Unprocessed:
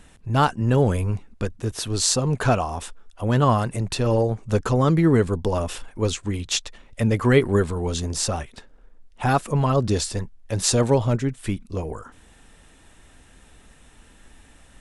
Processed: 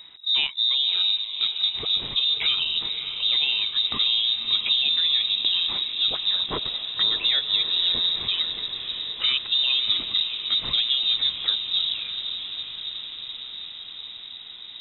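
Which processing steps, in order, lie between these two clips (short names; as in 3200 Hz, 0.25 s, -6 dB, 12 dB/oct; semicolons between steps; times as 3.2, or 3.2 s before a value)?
bell 62 Hz +4.5 dB 2.9 oct; compressor, threshold -20 dBFS, peak gain reduction 10.5 dB; on a send: diffused feedback echo 0.593 s, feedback 73%, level -9 dB; on the sum: inverted band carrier 3800 Hz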